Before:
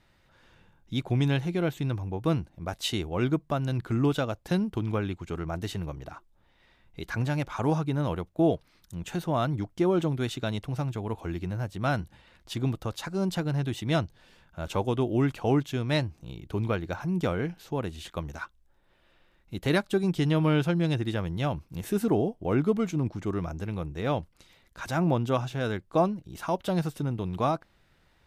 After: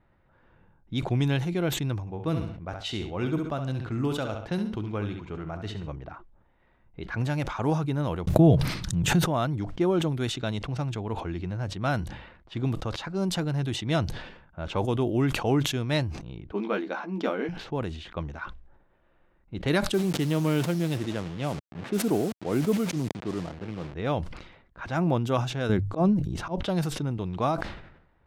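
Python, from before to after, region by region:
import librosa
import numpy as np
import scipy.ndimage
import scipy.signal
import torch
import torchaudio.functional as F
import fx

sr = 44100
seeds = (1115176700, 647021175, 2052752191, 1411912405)

y = fx.chain(x, sr, fx.high_shelf(hz=11000.0, db=7.0),
    fx.comb_fb(f0_hz=52.0, decay_s=0.5, harmonics='all', damping=0.0, mix_pct=40),
    fx.echo_feedback(ms=68, feedback_pct=30, wet_db=-9), at=(2.0, 5.88))
y = fx.chain(y, sr, fx.peak_eq(hz=130.0, db=14.5, octaves=1.3),
    fx.pre_swell(db_per_s=71.0), at=(8.27, 9.25))
y = fx.chain(y, sr, fx.brickwall_highpass(low_hz=190.0),
    fx.peak_eq(hz=8900.0, db=-14.0, octaves=0.8),
    fx.doubler(ms=15.0, db=-5.5), at=(16.53, 17.49))
y = fx.chain(y, sr, fx.delta_hold(step_db=-35.0),
    fx.highpass(hz=130.0, slope=12),
    fx.peak_eq(hz=1300.0, db=-3.0, octaves=1.9), at=(19.93, 23.94))
y = fx.chain(y, sr, fx.low_shelf(hz=450.0, db=12.0),
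    fx.hum_notches(base_hz=50, count=3),
    fx.auto_swell(attack_ms=149.0), at=(25.69, 26.63))
y = fx.env_lowpass(y, sr, base_hz=1400.0, full_db=-23.5)
y = fx.sustainer(y, sr, db_per_s=69.0)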